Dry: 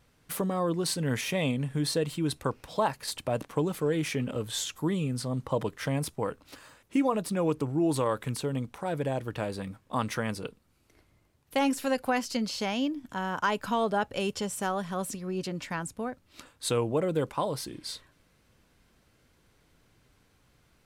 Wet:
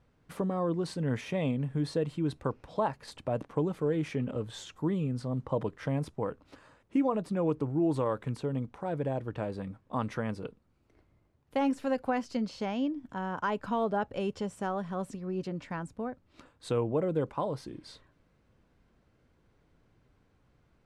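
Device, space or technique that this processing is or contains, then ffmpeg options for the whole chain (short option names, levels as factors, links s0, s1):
through cloth: -af "lowpass=8600,highshelf=f=2100:g=-13.5,volume=0.891"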